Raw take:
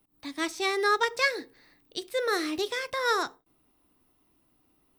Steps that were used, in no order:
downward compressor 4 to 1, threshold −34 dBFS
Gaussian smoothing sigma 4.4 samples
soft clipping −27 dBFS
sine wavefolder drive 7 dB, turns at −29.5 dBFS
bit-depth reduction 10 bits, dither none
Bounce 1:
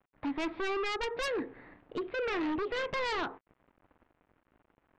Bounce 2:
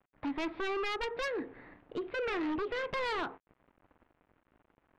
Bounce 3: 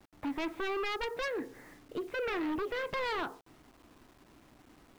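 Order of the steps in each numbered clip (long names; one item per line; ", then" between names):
bit-depth reduction, then Gaussian smoothing, then downward compressor, then soft clipping, then sine wavefolder
downward compressor, then bit-depth reduction, then Gaussian smoothing, then sine wavefolder, then soft clipping
downward compressor, then Gaussian smoothing, then sine wavefolder, then bit-depth reduction, then soft clipping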